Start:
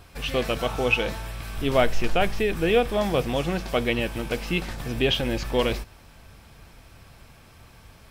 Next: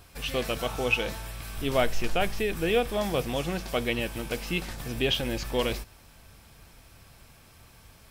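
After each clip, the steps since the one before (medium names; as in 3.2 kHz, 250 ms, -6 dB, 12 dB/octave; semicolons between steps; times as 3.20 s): treble shelf 5.3 kHz +8 dB; trim -4.5 dB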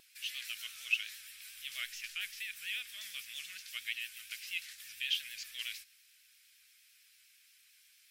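inverse Chebyshev high-pass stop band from 960 Hz, stop band 40 dB; vibrato 8.7 Hz 63 cents; trim -5.5 dB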